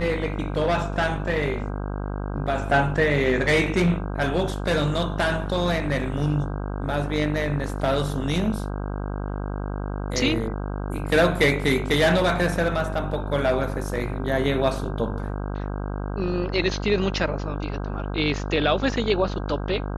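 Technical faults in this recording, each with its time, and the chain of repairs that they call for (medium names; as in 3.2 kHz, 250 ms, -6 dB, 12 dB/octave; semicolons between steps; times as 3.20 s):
buzz 50 Hz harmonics 32 -29 dBFS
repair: de-hum 50 Hz, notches 32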